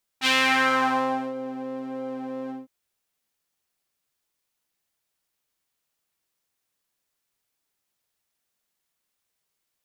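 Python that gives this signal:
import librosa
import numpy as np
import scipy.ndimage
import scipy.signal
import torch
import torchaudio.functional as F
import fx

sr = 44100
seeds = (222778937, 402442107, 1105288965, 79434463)

y = fx.sub_patch_pwm(sr, seeds[0], note=60, wave2='saw', interval_st=19, detune_cents=16, level2_db=-9.0, sub_db=-14.0, noise_db=-13.5, kind='bandpass', cutoff_hz=290.0, q=1.6, env_oct=3.5, env_decay_s=1.18, env_sustain_pct=20, attack_ms=48.0, decay_s=1.07, sustain_db=-20, release_s=0.17, note_s=2.29, lfo_hz=1.5, width_pct=48, width_swing_pct=19)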